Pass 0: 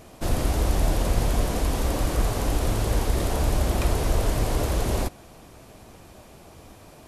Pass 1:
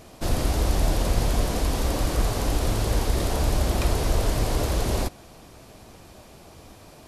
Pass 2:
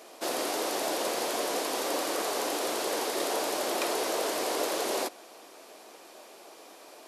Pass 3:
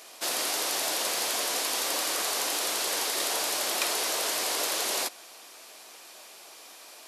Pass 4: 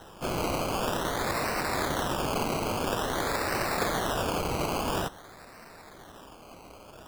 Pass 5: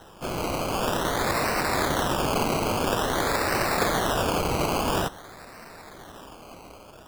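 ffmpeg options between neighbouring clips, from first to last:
-af "equalizer=f=4600:w=1.5:g=3.5"
-af "highpass=f=340:w=0.5412,highpass=f=340:w=1.3066"
-af "equalizer=f=350:w=0.36:g=-14.5,volume=2.24"
-af "acrusher=samples=19:mix=1:aa=0.000001:lfo=1:lforange=11.4:lforate=0.49"
-af "dynaudnorm=f=290:g=5:m=1.68"

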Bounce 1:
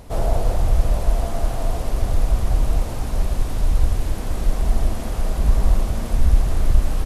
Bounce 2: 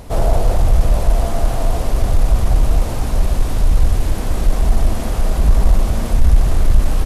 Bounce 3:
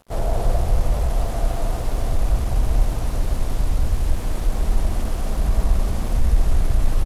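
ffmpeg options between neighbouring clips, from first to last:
-af "acontrast=51"
-af "aeval=exprs='sgn(val(0))*max(abs(val(0))-0.0266,0)':c=same,aecho=1:1:186.6|274.1:0.355|0.562,volume=0.473"

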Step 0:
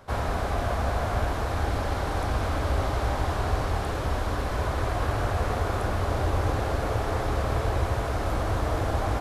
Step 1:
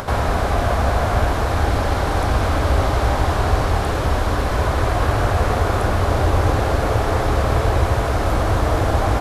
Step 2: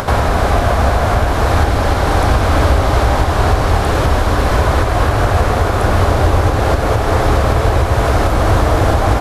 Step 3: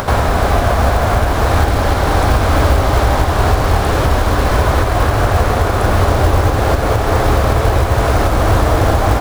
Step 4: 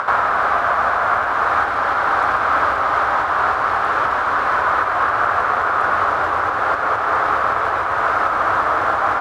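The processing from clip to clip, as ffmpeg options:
-af "acompressor=mode=upward:threshold=0.0447:ratio=2.5,volume=2.66"
-af "alimiter=limit=0.316:level=0:latency=1:release=294,volume=2.37"
-af "acrusher=bits=6:mode=log:mix=0:aa=0.000001"
-af "bandpass=f=1300:t=q:w=3:csg=0,volume=2.24"

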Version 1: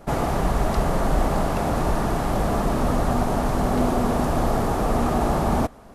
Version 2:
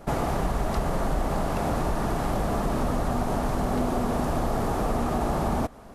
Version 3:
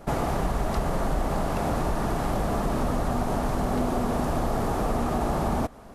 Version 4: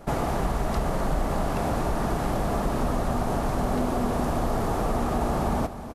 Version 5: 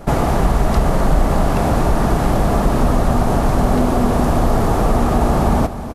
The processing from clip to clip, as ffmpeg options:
-af "acompressor=threshold=0.0708:ratio=3"
-af anull
-af "aecho=1:1:257:0.251"
-af "lowshelf=f=200:g=4,volume=2.66"

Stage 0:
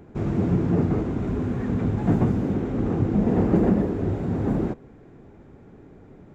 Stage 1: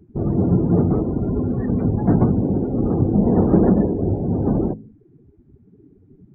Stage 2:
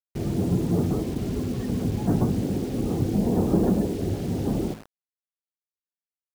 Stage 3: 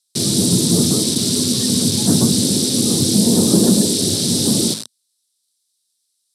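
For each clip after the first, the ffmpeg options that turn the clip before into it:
-af "bandreject=f=53.72:t=h:w=4,bandreject=f=107.44:t=h:w=4,bandreject=f=161.16:t=h:w=4,bandreject=f=214.88:t=h:w=4,bandreject=f=268.6:t=h:w=4,afftdn=nr=27:nf=-35,volume=1.78"
-af "acrusher=bits=5:mix=0:aa=0.000001,volume=0.473"
-af "highpass=f=110:w=0.5412,highpass=f=110:w=1.3066,equalizer=f=230:t=q:w=4:g=5,equalizer=f=770:t=q:w=4:g=-7,equalizer=f=2400:t=q:w=4:g=7,equalizer=f=3800:t=q:w=4:g=6,equalizer=f=6700:t=q:w=4:g=-9,lowpass=f=9800:w=0.5412,lowpass=f=9800:w=1.3066,aexciter=amount=10.8:drive=9:freq=3800,volume=2"

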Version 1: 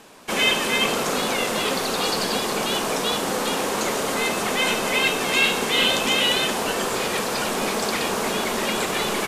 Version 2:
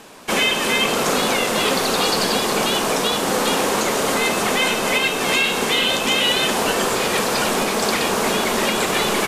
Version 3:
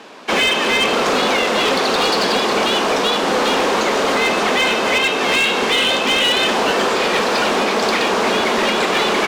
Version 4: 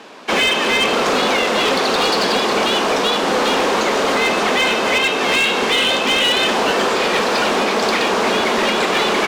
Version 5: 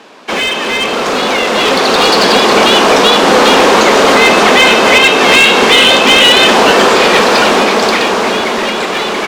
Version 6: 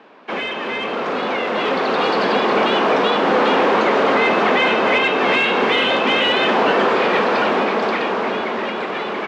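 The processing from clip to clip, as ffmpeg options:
-af "alimiter=limit=0.224:level=0:latency=1:release=273,volume=1.78"
-filter_complex "[0:a]acrossover=split=180 5600:gain=0.0708 1 0.112[s0][s1][s2];[s0][s1][s2]amix=inputs=3:normalize=0,asoftclip=type=hard:threshold=0.158,volume=1.68"
-af anull
-af "dynaudnorm=f=210:g=17:m=3.16,volume=1.19"
-af "highpass=120,lowpass=2400,volume=0.398"

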